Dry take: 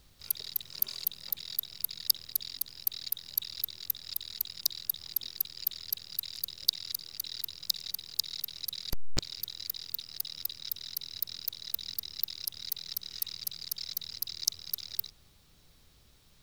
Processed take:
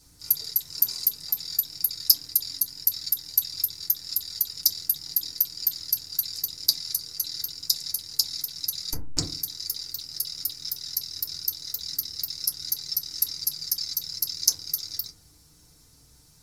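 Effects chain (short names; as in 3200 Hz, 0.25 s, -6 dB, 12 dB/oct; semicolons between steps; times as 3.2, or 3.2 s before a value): band shelf 7700 Hz +15.5 dB; in parallel at -9 dB: soft clip -5.5 dBFS, distortion -11 dB; on the sum: FDN reverb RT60 0.36 s, low-frequency decay 1.55×, high-frequency decay 0.3×, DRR -7 dB; gain -9 dB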